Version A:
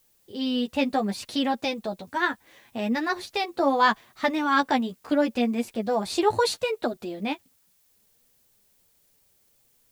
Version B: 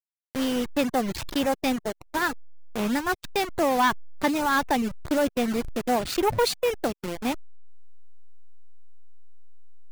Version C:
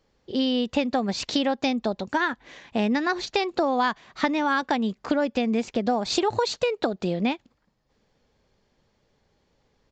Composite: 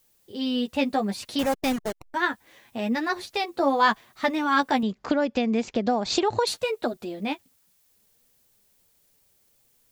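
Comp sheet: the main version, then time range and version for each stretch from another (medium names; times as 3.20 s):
A
1.39–2.14 s: from B
4.83–6.47 s: from C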